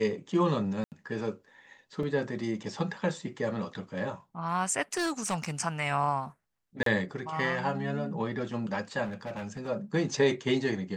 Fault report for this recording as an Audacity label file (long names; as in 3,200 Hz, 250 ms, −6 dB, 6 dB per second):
0.840000	0.920000	drop-out 78 ms
2.030000	2.030000	drop-out 2.7 ms
4.930000	5.500000	clipping −25.5 dBFS
6.830000	6.860000	drop-out 33 ms
9.040000	9.690000	clipping −33 dBFS